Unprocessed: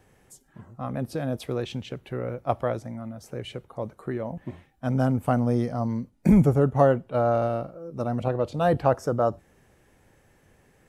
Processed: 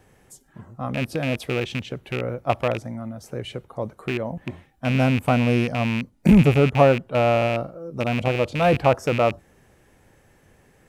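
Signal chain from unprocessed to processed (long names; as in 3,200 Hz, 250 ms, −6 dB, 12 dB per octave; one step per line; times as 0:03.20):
loose part that buzzes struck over −28 dBFS, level −21 dBFS
level +3.5 dB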